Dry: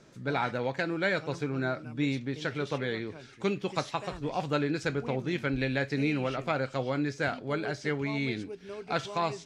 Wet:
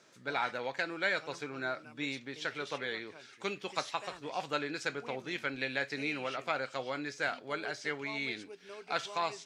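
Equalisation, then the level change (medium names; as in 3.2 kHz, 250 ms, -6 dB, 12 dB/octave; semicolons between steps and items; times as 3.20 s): high-pass 940 Hz 6 dB/octave; 0.0 dB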